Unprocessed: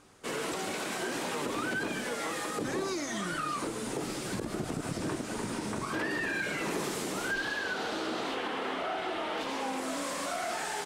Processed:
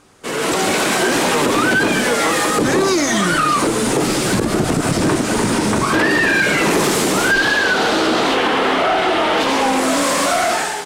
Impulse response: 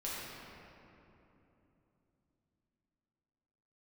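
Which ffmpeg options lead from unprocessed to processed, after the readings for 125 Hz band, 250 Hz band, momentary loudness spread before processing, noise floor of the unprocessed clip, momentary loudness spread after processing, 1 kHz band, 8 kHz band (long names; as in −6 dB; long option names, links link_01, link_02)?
+18.0 dB, +18.0 dB, 4 LU, −38 dBFS, 3 LU, +18.0 dB, +18.0 dB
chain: -af "dynaudnorm=framelen=170:gausssize=5:maxgain=12dB,asoftclip=type=tanh:threshold=-17dB,volume=8dB"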